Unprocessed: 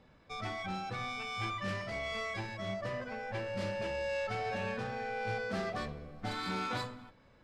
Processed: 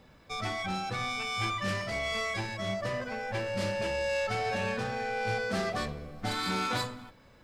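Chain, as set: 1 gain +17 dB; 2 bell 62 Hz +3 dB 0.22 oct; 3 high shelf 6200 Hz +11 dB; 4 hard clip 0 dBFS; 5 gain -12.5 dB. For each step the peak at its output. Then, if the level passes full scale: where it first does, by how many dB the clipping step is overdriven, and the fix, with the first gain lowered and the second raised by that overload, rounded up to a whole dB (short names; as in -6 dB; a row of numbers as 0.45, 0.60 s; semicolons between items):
-6.5, -6.5, -5.5, -5.5, -18.0 dBFS; no overload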